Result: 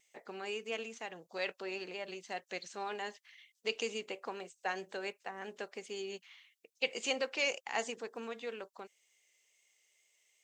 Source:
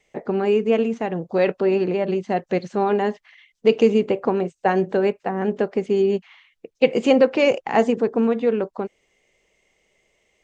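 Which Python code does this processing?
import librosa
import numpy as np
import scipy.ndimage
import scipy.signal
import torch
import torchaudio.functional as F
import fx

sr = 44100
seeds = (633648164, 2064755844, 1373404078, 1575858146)

y = np.diff(x, prepend=0.0)
y = fx.wow_flutter(y, sr, seeds[0], rate_hz=2.1, depth_cents=20.0)
y = F.gain(torch.from_numpy(y), 1.5).numpy()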